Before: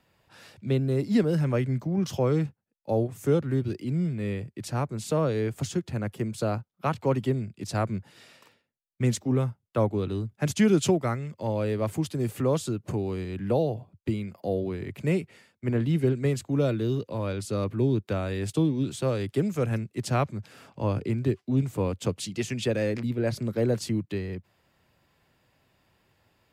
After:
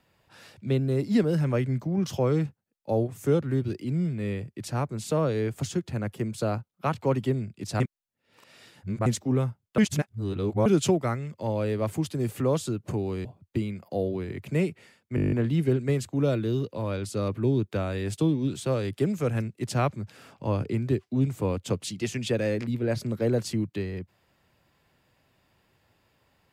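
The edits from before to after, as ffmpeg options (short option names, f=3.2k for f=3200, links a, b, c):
-filter_complex "[0:a]asplit=14[a][b][c][d][e][f][g][h][i][j][k][l][m][n];[a]atrim=end=7.802[o];[b]atrim=start=7.798:end=9.062,asetpts=PTS-STARTPTS,areverse[p];[c]atrim=start=9.058:end=9.782[q];[d]atrim=start=9.778:end=10.662,asetpts=PTS-STARTPTS,areverse[r];[e]atrim=start=10.658:end=13.252[s];[f]atrim=start=13.768:end=15.702[t];[g]atrim=start=15.678:end=15.702[u];[h]atrim=start=15.678:end=15.702[v];[i]atrim=start=15.678:end=15.702[w];[j]atrim=start=15.678:end=15.702[x];[k]atrim=start=15.678:end=15.702[y];[l]atrim=start=15.678:end=15.702[z];[m]atrim=start=15.678:end=15.702[aa];[n]atrim=start=15.678[ab];[o][p]acrossfade=d=0.004:c1=hsin:c2=hsin[ac];[ac][q]acrossfade=d=0.004:c1=hsin:c2=hsin[ad];[ad][r]acrossfade=d=0.004:c1=hsin:c2=hsin[ae];[ae][s]acrossfade=d=0.004:c1=hsin:c2=hsin[af];[af][t]acrossfade=d=0.004:c1=hsin:c2=hsin[ag];[ag][u]acrossfade=d=0.004:c1=hsin:c2=hsin[ah];[ah][v]acrossfade=d=0.004:c1=hsin:c2=hsin[ai];[ai][w]acrossfade=d=0.004:c1=hsin:c2=hsin[aj];[aj][x]acrossfade=d=0.004:c1=hsin:c2=hsin[ak];[ak][y]acrossfade=d=0.004:c1=hsin:c2=hsin[al];[al][z]acrossfade=d=0.004:c1=hsin:c2=hsin[am];[am][aa]acrossfade=d=0.004:c1=hsin:c2=hsin[an];[an][ab]acrossfade=d=0.004:c1=hsin:c2=hsin"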